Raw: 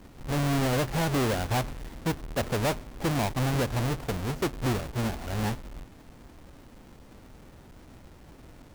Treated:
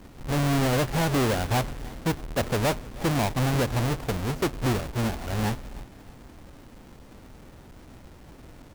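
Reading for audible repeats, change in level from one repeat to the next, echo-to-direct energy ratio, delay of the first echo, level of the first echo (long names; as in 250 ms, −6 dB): 2, −6.5 dB, −21.0 dB, 312 ms, −22.0 dB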